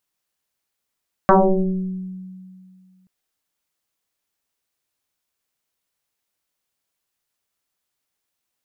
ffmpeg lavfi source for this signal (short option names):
-f lavfi -i "aevalsrc='0.398*pow(10,-3*t/2.29)*sin(2*PI*186*t+6.6*pow(10,-3*t/1.19)*sin(2*PI*1.03*186*t))':d=1.78:s=44100"